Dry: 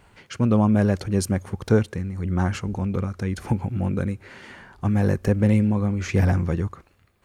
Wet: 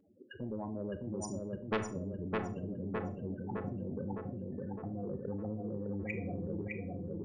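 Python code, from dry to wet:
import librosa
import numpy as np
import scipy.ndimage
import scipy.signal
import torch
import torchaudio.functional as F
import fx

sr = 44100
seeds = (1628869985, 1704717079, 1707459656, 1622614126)

p1 = fx.wiener(x, sr, points=41)
p2 = fx.highpass(p1, sr, hz=260.0, slope=6)
p3 = fx.high_shelf(p2, sr, hz=7800.0, db=-9.0)
p4 = fx.level_steps(p3, sr, step_db=19)
p5 = fx.notch_comb(p4, sr, f0_hz=1300.0)
p6 = fx.spec_topn(p5, sr, count=8)
p7 = fx.env_flanger(p6, sr, rest_ms=3.6, full_db=-38.5)
p8 = 10.0 ** (-25.5 / 20.0) * np.tanh(p7 / 10.0 ** (-25.5 / 20.0))
p9 = p8 + fx.echo_filtered(p8, sr, ms=610, feedback_pct=49, hz=3300.0, wet_db=-4.0, dry=0)
p10 = fx.rev_schroeder(p9, sr, rt60_s=0.32, comb_ms=25, drr_db=11.0)
p11 = fx.spectral_comp(p10, sr, ratio=2.0)
y = F.gain(torch.from_numpy(p11), 2.0).numpy()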